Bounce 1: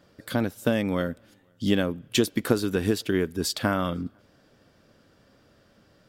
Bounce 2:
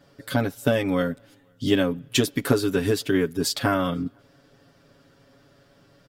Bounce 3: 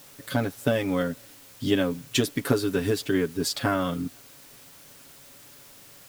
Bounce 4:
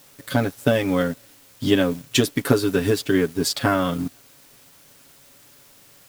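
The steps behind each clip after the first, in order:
comb 7.2 ms, depth 95%
added noise white -48 dBFS; trim -2.5 dB
companding laws mixed up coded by A; trim +5.5 dB

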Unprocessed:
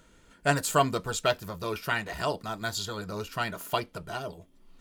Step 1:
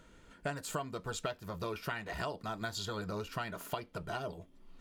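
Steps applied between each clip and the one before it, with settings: treble shelf 5.3 kHz -7.5 dB; compression 12:1, threshold -34 dBFS, peak gain reduction 17.5 dB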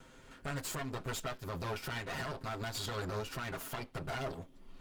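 comb filter that takes the minimum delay 7.6 ms; peak limiter -33.5 dBFS, peak gain reduction 9 dB; trim +4.5 dB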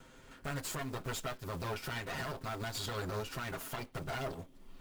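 block-companded coder 5-bit

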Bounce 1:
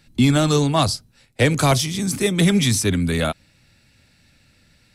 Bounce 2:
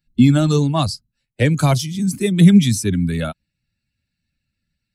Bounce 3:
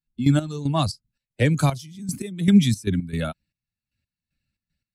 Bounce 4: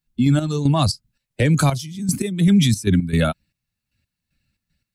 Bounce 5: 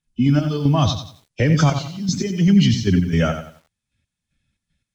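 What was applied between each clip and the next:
expander on every frequency bin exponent 1.5; peaking EQ 190 Hz +10.5 dB 1.2 oct; trim -1 dB
trance gate "..x..xx.x.xxx." 115 bpm -12 dB; trim -3.5 dB
loudness maximiser +16 dB; trim -7.5 dB
knee-point frequency compression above 2.3 kHz 1.5:1; bit-crushed delay 90 ms, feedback 35%, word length 8-bit, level -8.5 dB

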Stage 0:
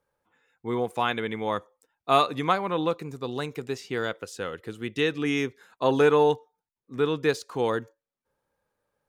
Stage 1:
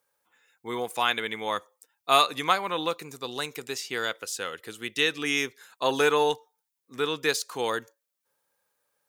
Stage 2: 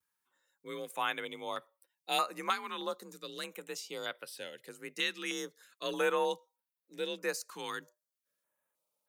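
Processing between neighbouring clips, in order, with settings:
tilt EQ +3.5 dB/octave
vibrato 0.63 Hz 29 cents; frequency shift +42 Hz; step-sequenced notch 3.2 Hz 600–6800 Hz; trim -7.5 dB

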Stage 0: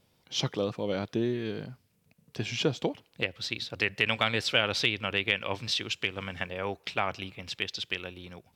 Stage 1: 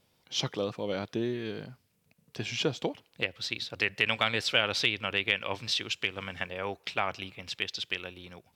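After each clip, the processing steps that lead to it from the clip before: bass shelf 410 Hz -4 dB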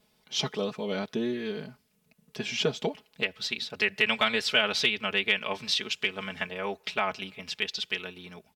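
comb 4.7 ms, depth 83%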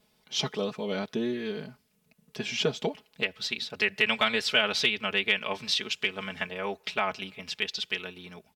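no audible change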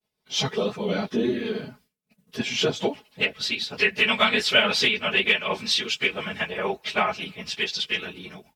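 phase randomisation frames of 50 ms; expander -56 dBFS; trim +5 dB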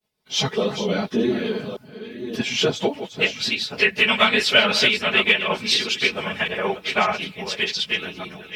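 chunks repeated in reverse 589 ms, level -10 dB; trim +3 dB

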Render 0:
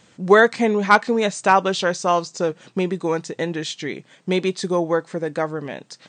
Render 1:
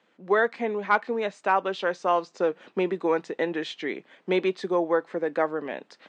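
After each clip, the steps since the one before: high-pass 160 Hz; three-band isolator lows -24 dB, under 210 Hz, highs -20 dB, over 3.4 kHz; gain riding within 4 dB 0.5 s; trim -5 dB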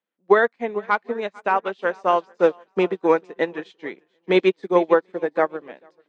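shuffle delay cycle 740 ms, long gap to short 1.5:1, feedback 31%, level -14 dB; loudness maximiser +12.5 dB; upward expansion 2.5:1, over -29 dBFS; trim -2 dB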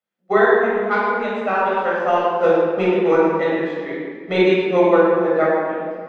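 reverberation RT60 1.8 s, pre-delay 18 ms, DRR -6 dB; trim -5.5 dB

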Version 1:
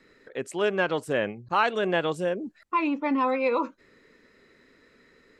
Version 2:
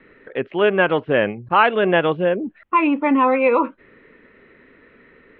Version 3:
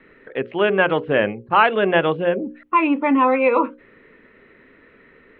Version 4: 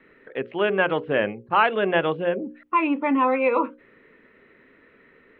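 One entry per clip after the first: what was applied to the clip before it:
steep low-pass 3.2 kHz 48 dB/octave; trim +8.5 dB
hum notches 60/120/180/240/300/360/420/480/540 Hz
bass shelf 76 Hz -6.5 dB; trim -4 dB

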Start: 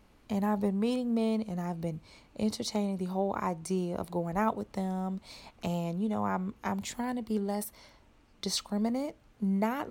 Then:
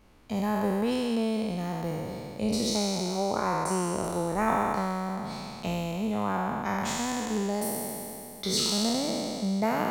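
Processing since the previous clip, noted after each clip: spectral sustain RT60 2.88 s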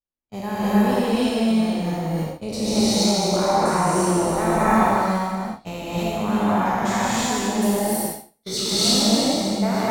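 flange 0.93 Hz, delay 1.2 ms, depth 9.4 ms, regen +65%; gate -36 dBFS, range -42 dB; gated-style reverb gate 360 ms rising, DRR -8 dB; trim +4 dB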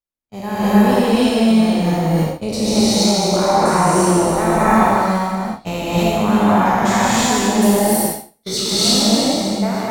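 level rider; trim -1 dB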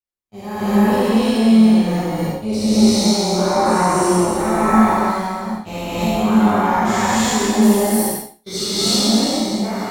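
gated-style reverb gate 110 ms flat, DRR -7 dB; trim -9.5 dB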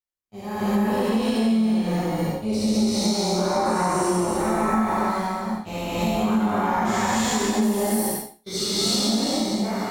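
compression, threshold -15 dBFS, peak gain reduction 8 dB; trim -3 dB

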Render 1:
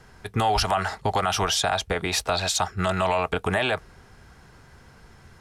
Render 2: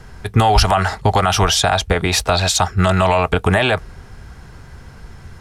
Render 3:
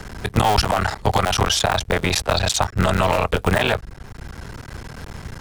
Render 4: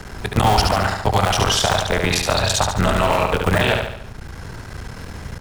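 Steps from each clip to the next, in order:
bass shelf 130 Hz +9.5 dB; trim +7.5 dB
cycle switcher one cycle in 3, muted; three bands compressed up and down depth 40%; trim -2 dB
feedback delay 72 ms, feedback 49%, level -4.5 dB

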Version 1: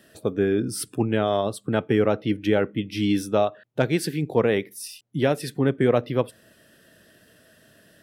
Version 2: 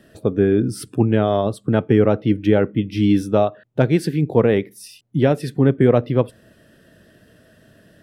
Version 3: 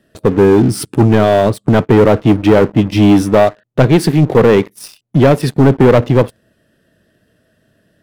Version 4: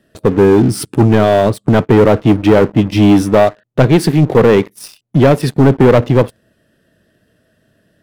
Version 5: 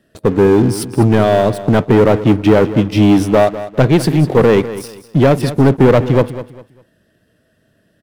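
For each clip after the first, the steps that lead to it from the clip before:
tilt EQ -2 dB/octave; trim +2.5 dB
waveshaping leveller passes 3
no audible change
feedback delay 200 ms, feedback 28%, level -14 dB; trim -1.5 dB

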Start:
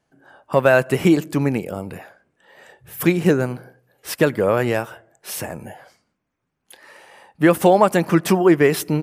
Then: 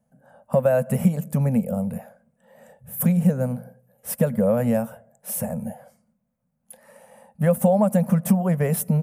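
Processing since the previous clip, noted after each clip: FFT filter 110 Hz 0 dB, 230 Hz +11 dB, 320 Hz -29 dB, 520 Hz +4 dB, 1.1 kHz -9 dB, 4.4 kHz -16 dB, 10 kHz +3 dB; compression 2.5:1, threshold -17 dBFS, peak gain reduction 8 dB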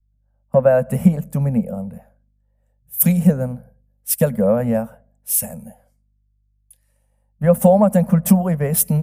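hum 50 Hz, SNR 25 dB; three bands expanded up and down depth 100%; trim +2.5 dB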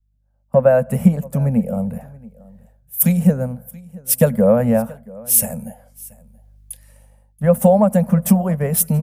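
level rider gain up to 16.5 dB; delay 679 ms -22.5 dB; trim -1 dB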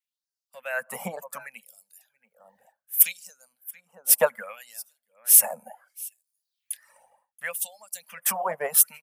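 LFO high-pass sine 0.67 Hz 800–5000 Hz; reverb removal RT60 0.94 s

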